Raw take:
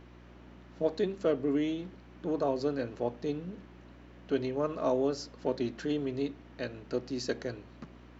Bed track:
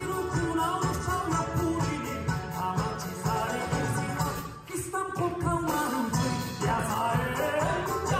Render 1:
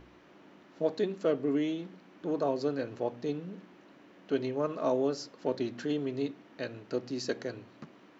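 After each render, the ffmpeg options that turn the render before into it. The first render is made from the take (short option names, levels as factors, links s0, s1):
-af "bandreject=f=60:t=h:w=4,bandreject=f=120:t=h:w=4,bandreject=f=180:t=h:w=4,bandreject=f=240:t=h:w=4"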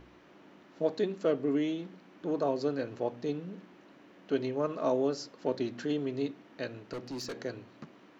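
-filter_complex "[0:a]asettb=1/sr,asplit=3[s0][s1][s2];[s0]atrim=end=6.934[s3];[s1]atrim=start=6.93:end=7.37,asetpts=PTS-STARTPTS,afade=t=in:d=0.004:c=qsin,afade=t=out:st=0.436:d=0.004:c=qsin,volume=56.2,asoftclip=hard,volume=0.0178[s4];[s2]atrim=start=7.366[s5];[s3][s4]acrossfade=d=0.004:c1=hsin:c2=qsin[s6];[s6][s5]acrossfade=d=0.004:c1=qsin:c2=hsin"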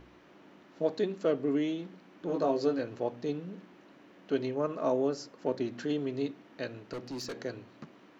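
-filter_complex "[0:a]asettb=1/sr,asplit=3[s0][s1][s2];[s0]atrim=end=2.274[s3];[s1]atrim=start=2.27:end=2.79,asetpts=PTS-STARTPTS,afade=t=in:d=0.004:c=qsin,afade=t=out:st=0.516:d=0.004:c=qsin,asplit=2[s4][s5];[s5]adelay=18,volume=0.708[s6];[s4][s6]amix=inputs=2:normalize=0,atrim=end_sample=22932[s7];[s2]atrim=start=2.786[s8];[s3][s7]acrossfade=d=0.004:c1=hsin:c2=qsin[s9];[s9][s8]acrossfade=d=0.004:c1=qsin:c2=hsin,asettb=1/sr,asplit=3[s10][s11][s12];[s10]atrim=end=4.544[s13];[s11]atrim=start=4.54:end=5.72,asetpts=PTS-STARTPTS,afade=t=in:d=0.004:c=qsin,afade=t=out:st=1.176:d=0.004:c=qsin,equalizer=f=4000:w=1.5:g=-4.5[s14];[s12]atrim=start=5.716[s15];[s13][s14]acrossfade=d=0.004:c1=hsin:c2=qsin[s16];[s16][s15]acrossfade=d=0.004:c1=qsin:c2=hsin"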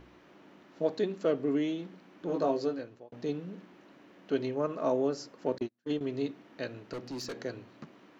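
-filter_complex "[0:a]asettb=1/sr,asplit=3[s0][s1][s2];[s0]atrim=end=5.584[s3];[s1]atrim=start=5.58:end=6.01,asetpts=PTS-STARTPTS,afade=t=in:d=0.004:c=qsin,afade=t=out:st=0.426:d=0.004:c=qsin,agate=range=0.01:threshold=0.0251:ratio=16:release=100:detection=peak[s4];[s2]atrim=start=6.006[s5];[s3][s4]acrossfade=d=0.004:c1=hsin:c2=qsin[s6];[s6][s5]acrossfade=d=0.004:c1=qsin:c2=hsin,asplit=2[s7][s8];[s7]atrim=end=3.12,asetpts=PTS-STARTPTS,afade=t=out:st=2.48:d=0.64[s9];[s8]atrim=start=3.12,asetpts=PTS-STARTPTS,afade=t=in:d=0.004:c=hsin[s10];[s9][s10]concat=n=2:v=0:a=1"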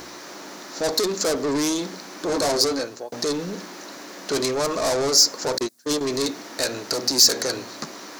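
-filter_complex "[0:a]asplit=2[s0][s1];[s1]highpass=f=720:p=1,volume=25.1,asoftclip=type=tanh:threshold=0.158[s2];[s0][s2]amix=inputs=2:normalize=0,lowpass=f=2900:p=1,volume=0.501,aexciter=amount=15.4:drive=1.5:freq=4400"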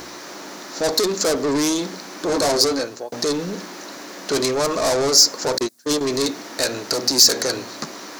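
-af "volume=1.41,alimiter=limit=0.708:level=0:latency=1"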